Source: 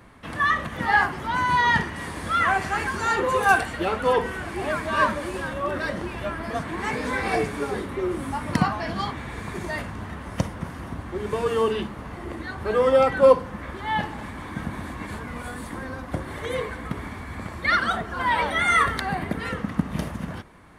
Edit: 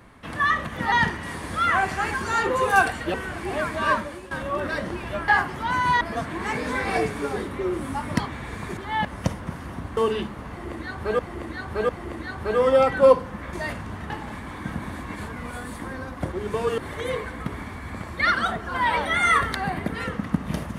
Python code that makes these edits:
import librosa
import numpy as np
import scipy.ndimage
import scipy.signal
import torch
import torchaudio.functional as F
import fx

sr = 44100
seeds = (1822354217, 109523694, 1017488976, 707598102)

y = fx.edit(x, sr, fx.move(start_s=0.92, length_s=0.73, to_s=6.39),
    fx.cut(start_s=3.87, length_s=0.38),
    fx.fade_out_to(start_s=4.95, length_s=0.47, floor_db=-14.0),
    fx.cut(start_s=8.58, length_s=0.47),
    fx.swap(start_s=9.62, length_s=0.57, other_s=13.73, other_length_s=0.28),
    fx.move(start_s=11.11, length_s=0.46, to_s=16.23),
    fx.repeat(start_s=12.09, length_s=0.7, count=3), tone=tone)